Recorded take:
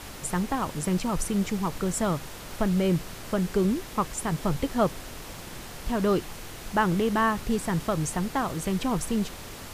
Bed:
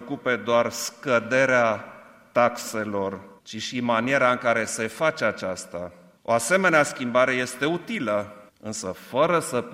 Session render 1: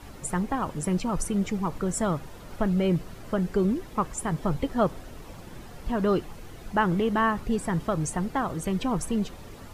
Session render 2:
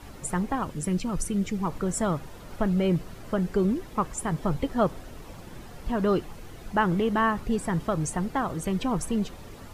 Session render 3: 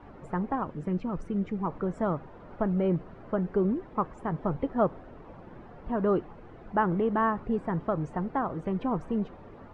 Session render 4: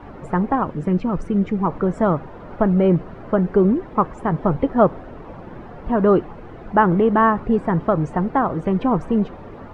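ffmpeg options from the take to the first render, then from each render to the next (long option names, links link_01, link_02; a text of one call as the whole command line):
ffmpeg -i in.wav -af "afftdn=noise_reduction=11:noise_floor=-41" out.wav
ffmpeg -i in.wav -filter_complex "[0:a]asettb=1/sr,asplit=3[link_01][link_02][link_03];[link_01]atrim=end=0.634[link_04];[link_02]atrim=start=0.63:end=1.6,asetpts=PTS-STARTPTS,afade=type=in:duration=0.004:curve=qsin,afade=type=out:start_time=0.966:duration=0.004:curve=qsin,equalizer=frequency=850:width=0.96:gain=-7.5[link_05];[link_03]atrim=start=1.596[link_06];[link_04][link_05]acrossfade=duration=0.004:curve1=hsin:curve2=qsin[link_07];[link_07][link_06]acrossfade=duration=0.004:curve1=qsin:curve2=hsin" out.wav
ffmpeg -i in.wav -af "lowpass=1300,lowshelf=frequency=130:gain=-9.5" out.wav
ffmpeg -i in.wav -af "volume=10.5dB" out.wav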